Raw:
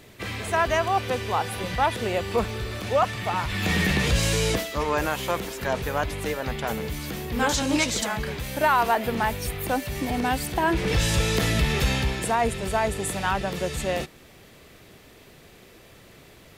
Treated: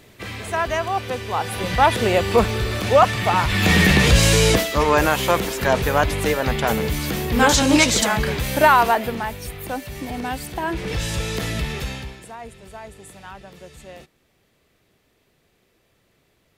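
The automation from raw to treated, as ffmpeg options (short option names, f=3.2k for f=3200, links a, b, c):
-af "volume=8dB,afade=t=in:st=1.29:d=0.64:silence=0.398107,afade=t=out:st=8.6:d=0.63:silence=0.298538,afade=t=out:st=11.6:d=0.65:silence=0.266073"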